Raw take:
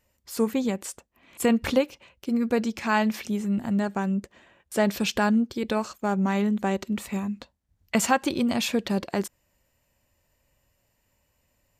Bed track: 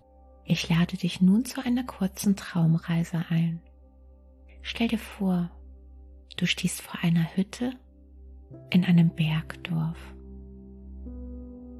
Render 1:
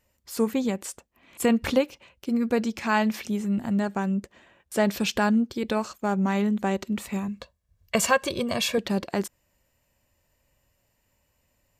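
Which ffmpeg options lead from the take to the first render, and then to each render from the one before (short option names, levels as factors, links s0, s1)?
-filter_complex "[0:a]asettb=1/sr,asplit=3[s0][s1][s2];[s0]atrim=end=7.284[s3];[s1]atrim=start=7.28:end=8.78,asetpts=PTS-STARTPTS,afade=t=in:d=0.004:c=qsin,afade=t=out:st=1.496:d=0.004:c=qsin,aecho=1:1:1.8:0.69,atrim=end_sample=66150[s4];[s2]atrim=start=8.776[s5];[s3][s4]acrossfade=d=0.004:c1=hsin:c2=qsin[s6];[s6][s5]acrossfade=d=0.004:c1=qsin:c2=hsin"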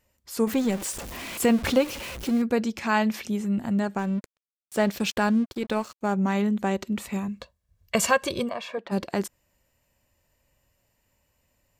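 -filter_complex "[0:a]asettb=1/sr,asplit=3[s0][s1][s2];[s0]atrim=end=0.474[s3];[s1]atrim=start=0.47:end=2.42,asetpts=PTS-STARTPTS,afade=t=in:d=0.004:c=qsin,afade=t=out:st=1.946:d=0.004:c=qsin,aeval=exprs='val(0)+0.5*0.0282*sgn(val(0))':c=same[s4];[s2]atrim=start=2.416[s5];[s3][s4]acrossfade=d=0.004:c1=hsin:c2=qsin[s6];[s6][s5]acrossfade=d=0.004:c1=qsin:c2=hsin,asettb=1/sr,asplit=3[s7][s8][s9];[s7]atrim=end=3.984[s10];[s8]atrim=start=3.98:end=6.01,asetpts=PTS-STARTPTS,afade=t=in:d=0.004:c=qsin,afade=t=out:st=2.026:d=0.004:c=qsin,aeval=exprs='sgn(val(0))*max(abs(val(0))-0.00668,0)':c=same[s11];[s9]atrim=start=6.006[s12];[s10][s11]acrossfade=d=0.004:c1=hsin:c2=qsin[s13];[s13][s12]acrossfade=d=0.004:c1=qsin:c2=hsin,asplit=3[s14][s15][s16];[s14]afade=t=out:st=8.48:d=0.02[s17];[s15]bandpass=f=930:t=q:w=1.2,afade=t=in:st=8.48:d=0.02,afade=t=out:st=8.91:d=0.02[s18];[s16]afade=t=in:st=8.91:d=0.02[s19];[s17][s18][s19]amix=inputs=3:normalize=0"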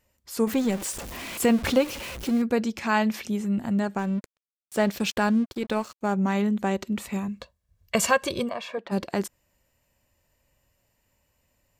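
-af anull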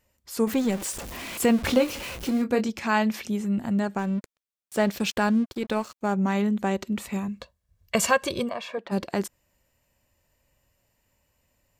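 -filter_complex "[0:a]asettb=1/sr,asplit=3[s0][s1][s2];[s0]atrim=end=1.684[s3];[s1]atrim=start=1.68:end=2.69,asetpts=PTS-STARTPTS,afade=t=in:d=0.004:c=qsin,afade=t=out:st=1.006:d=0.004:c=qsin,asplit=2[s4][s5];[s5]adelay=24,volume=0.398[s6];[s4][s6]amix=inputs=2:normalize=0,atrim=end_sample=44541[s7];[s2]atrim=start=2.686[s8];[s3][s7]acrossfade=d=0.004:c1=hsin:c2=qsin[s9];[s9][s8]acrossfade=d=0.004:c1=qsin:c2=hsin"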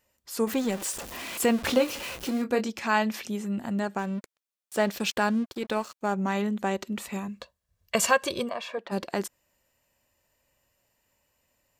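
-af "lowshelf=f=200:g=-9.5,bandreject=f=2200:w=26"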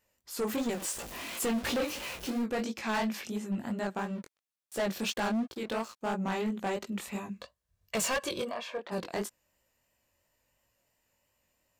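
-af "flanger=delay=17:depth=6:speed=2.9,asoftclip=type=hard:threshold=0.0447"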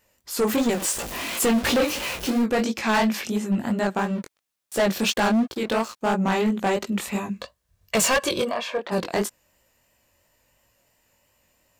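-af "volume=3.16"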